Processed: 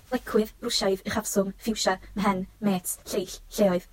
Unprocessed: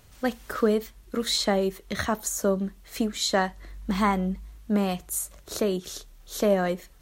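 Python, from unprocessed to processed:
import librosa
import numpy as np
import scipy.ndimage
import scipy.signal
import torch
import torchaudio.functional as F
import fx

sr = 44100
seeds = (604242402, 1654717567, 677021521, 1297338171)

y = fx.stretch_vocoder_free(x, sr, factor=0.56)
y = y * 10.0 ** (3.5 / 20.0)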